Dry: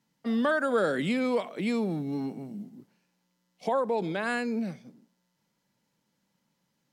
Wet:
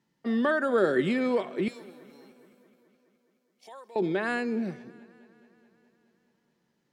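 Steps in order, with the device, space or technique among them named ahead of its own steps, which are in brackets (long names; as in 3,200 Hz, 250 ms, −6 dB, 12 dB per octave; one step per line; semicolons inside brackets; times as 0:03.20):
inside a helmet (high-shelf EQ 5,700 Hz −8 dB; hollow resonant body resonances 370/1,800 Hz, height 13 dB, ringing for 85 ms)
0:01.68–0:03.96: first difference
feedback echo with a swinging delay time 211 ms, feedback 68%, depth 57 cents, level −22.5 dB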